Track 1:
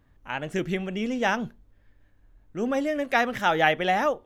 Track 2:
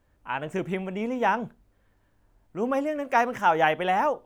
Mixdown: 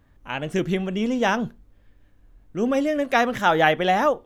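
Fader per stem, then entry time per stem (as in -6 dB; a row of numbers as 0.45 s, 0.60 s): +3.0 dB, -4.5 dB; 0.00 s, 0.00 s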